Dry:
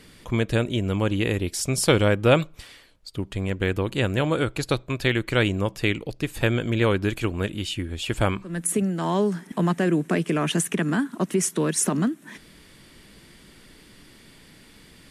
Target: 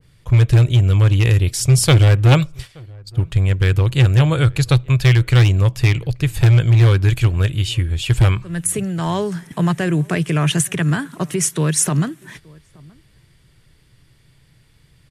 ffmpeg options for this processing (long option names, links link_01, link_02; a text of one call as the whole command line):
ffmpeg -i in.wav -filter_complex "[0:a]agate=range=-11dB:threshold=-42dB:ratio=16:detection=peak,lowshelf=frequency=170:width_type=q:width=3:gain=8.5,asoftclip=type=hard:threshold=-9.5dB,asplit=2[link_01][link_02];[link_02]adelay=874.6,volume=-26dB,highshelf=frequency=4000:gain=-19.7[link_03];[link_01][link_03]amix=inputs=2:normalize=0,adynamicequalizer=threshold=0.0158:dfrequency=1500:dqfactor=0.7:tfrequency=1500:tqfactor=0.7:attack=5:release=100:ratio=0.375:range=2:mode=boostabove:tftype=highshelf,volume=2.5dB" out.wav